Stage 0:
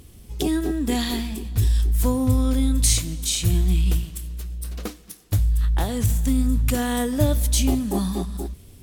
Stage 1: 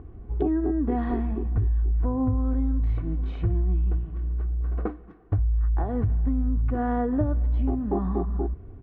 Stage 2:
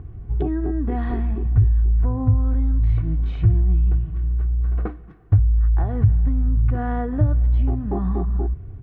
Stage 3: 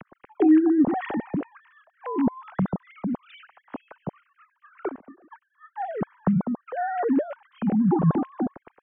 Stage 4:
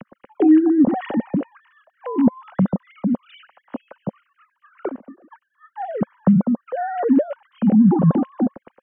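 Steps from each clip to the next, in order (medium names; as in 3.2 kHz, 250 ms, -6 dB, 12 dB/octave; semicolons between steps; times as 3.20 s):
low-pass 1.4 kHz 24 dB/octave; comb 2.7 ms, depth 38%; compression, threshold -24 dBFS, peak gain reduction 11 dB; trim +3 dB
ten-band graphic EQ 125 Hz +8 dB, 250 Hz -7 dB, 500 Hz -5 dB, 1 kHz -4 dB; trim +5 dB
formants replaced by sine waves; trim -7.5 dB
small resonant body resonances 220/530/2900 Hz, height 9 dB, ringing for 25 ms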